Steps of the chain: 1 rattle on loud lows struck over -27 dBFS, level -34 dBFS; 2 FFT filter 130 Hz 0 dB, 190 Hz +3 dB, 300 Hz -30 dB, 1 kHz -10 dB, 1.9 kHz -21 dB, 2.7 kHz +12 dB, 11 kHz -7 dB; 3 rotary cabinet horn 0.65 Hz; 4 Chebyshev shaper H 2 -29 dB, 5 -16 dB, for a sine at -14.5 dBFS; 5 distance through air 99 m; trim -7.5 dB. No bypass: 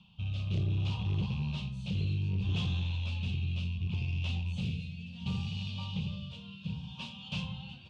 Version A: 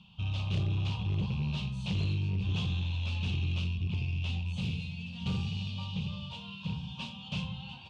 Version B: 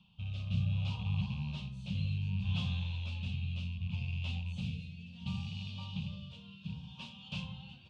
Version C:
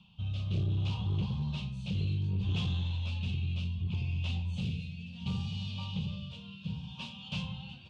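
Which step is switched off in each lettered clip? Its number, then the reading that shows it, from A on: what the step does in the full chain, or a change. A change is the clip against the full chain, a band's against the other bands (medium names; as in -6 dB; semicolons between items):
3, momentary loudness spread change -2 LU; 4, 500 Hz band -6.0 dB; 1, 2 kHz band -2.0 dB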